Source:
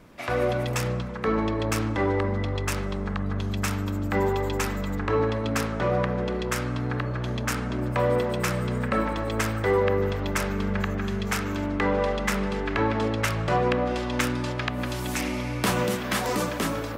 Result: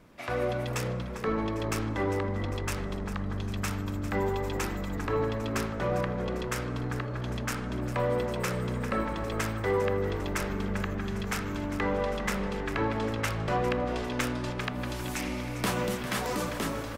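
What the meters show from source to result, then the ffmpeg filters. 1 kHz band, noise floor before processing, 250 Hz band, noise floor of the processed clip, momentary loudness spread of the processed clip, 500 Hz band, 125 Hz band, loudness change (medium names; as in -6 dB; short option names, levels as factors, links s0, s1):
-4.5 dB, -31 dBFS, -4.5 dB, -35 dBFS, 5 LU, -5.0 dB, -4.5 dB, -4.5 dB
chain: -filter_complex "[0:a]asplit=8[s0][s1][s2][s3][s4][s5][s6][s7];[s1]adelay=400,afreqshift=-59,volume=0.224[s8];[s2]adelay=800,afreqshift=-118,volume=0.135[s9];[s3]adelay=1200,afreqshift=-177,volume=0.0804[s10];[s4]adelay=1600,afreqshift=-236,volume=0.0484[s11];[s5]adelay=2000,afreqshift=-295,volume=0.0292[s12];[s6]adelay=2400,afreqshift=-354,volume=0.0174[s13];[s7]adelay=2800,afreqshift=-413,volume=0.0105[s14];[s0][s8][s9][s10][s11][s12][s13][s14]amix=inputs=8:normalize=0,volume=0.562"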